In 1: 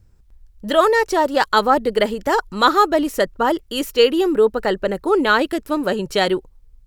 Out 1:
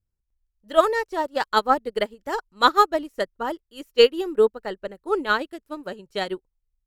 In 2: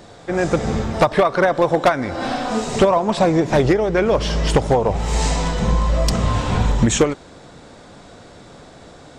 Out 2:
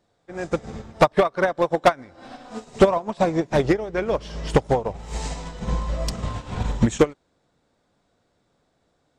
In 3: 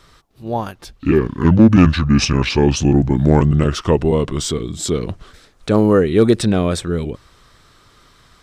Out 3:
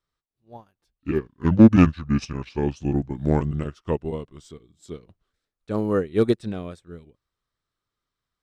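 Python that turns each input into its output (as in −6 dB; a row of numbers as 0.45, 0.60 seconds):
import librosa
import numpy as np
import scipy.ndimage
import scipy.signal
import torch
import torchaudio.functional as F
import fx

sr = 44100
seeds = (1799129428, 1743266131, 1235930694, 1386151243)

y = fx.upward_expand(x, sr, threshold_db=-28.0, expansion=2.5)
y = y * 10.0 ** (-24 / 20.0) / np.sqrt(np.mean(np.square(y)))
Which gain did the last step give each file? 0.0, +1.5, −1.0 decibels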